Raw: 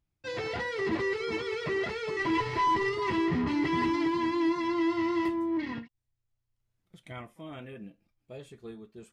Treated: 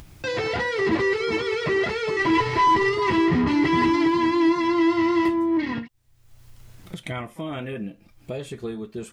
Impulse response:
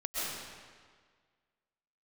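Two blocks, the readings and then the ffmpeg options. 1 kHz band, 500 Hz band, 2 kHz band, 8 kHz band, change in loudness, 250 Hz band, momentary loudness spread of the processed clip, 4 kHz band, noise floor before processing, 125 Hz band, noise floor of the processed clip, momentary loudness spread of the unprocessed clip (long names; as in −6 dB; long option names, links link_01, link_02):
+8.0 dB, +8.0 dB, +8.0 dB, can't be measured, +7.5 dB, +8.0 dB, 14 LU, +8.0 dB, −82 dBFS, +8.5 dB, −54 dBFS, 18 LU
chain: -af "acompressor=mode=upward:threshold=-32dB:ratio=2.5,volume=8dB"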